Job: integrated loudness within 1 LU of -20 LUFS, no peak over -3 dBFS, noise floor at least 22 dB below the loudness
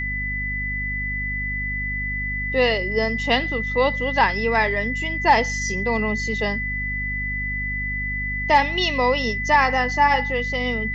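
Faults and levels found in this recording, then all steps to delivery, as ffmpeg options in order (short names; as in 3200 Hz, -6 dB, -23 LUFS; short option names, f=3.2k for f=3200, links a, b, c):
hum 50 Hz; harmonics up to 250 Hz; hum level -28 dBFS; steady tone 2000 Hz; tone level -25 dBFS; loudness -21.5 LUFS; peak -5.0 dBFS; loudness target -20.0 LUFS
-> -af "bandreject=f=50:t=h:w=6,bandreject=f=100:t=h:w=6,bandreject=f=150:t=h:w=6,bandreject=f=200:t=h:w=6,bandreject=f=250:t=h:w=6"
-af "bandreject=f=2k:w=30"
-af "volume=1.5dB"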